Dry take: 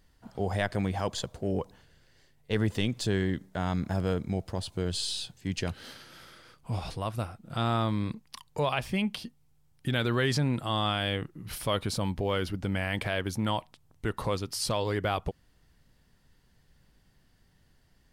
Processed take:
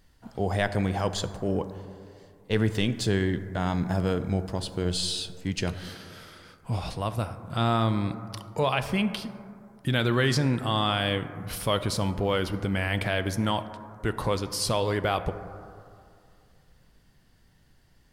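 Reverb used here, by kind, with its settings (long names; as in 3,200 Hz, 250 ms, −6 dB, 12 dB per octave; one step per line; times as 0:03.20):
dense smooth reverb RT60 2.5 s, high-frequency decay 0.25×, DRR 10.5 dB
level +3 dB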